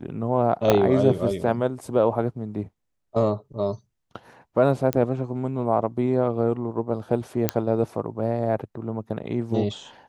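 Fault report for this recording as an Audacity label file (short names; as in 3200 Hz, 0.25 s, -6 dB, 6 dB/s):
0.700000	0.700000	pop -4 dBFS
4.930000	4.930000	pop -9 dBFS
7.490000	7.490000	pop -5 dBFS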